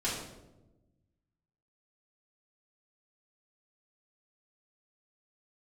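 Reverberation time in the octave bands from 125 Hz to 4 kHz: 1.8, 1.6, 1.2, 0.85, 0.65, 0.60 seconds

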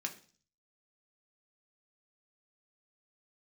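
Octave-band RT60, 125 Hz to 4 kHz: 0.70, 0.55, 0.45, 0.40, 0.40, 0.55 seconds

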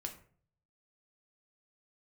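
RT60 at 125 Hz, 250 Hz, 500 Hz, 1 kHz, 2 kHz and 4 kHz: 0.90, 0.60, 0.55, 0.45, 0.40, 0.30 seconds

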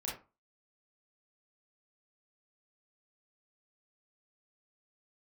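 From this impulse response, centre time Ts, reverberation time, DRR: 37 ms, 0.30 s, −5.0 dB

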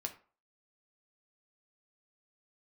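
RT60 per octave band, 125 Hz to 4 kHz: 0.30, 0.35, 0.40, 0.45, 0.35, 0.25 seconds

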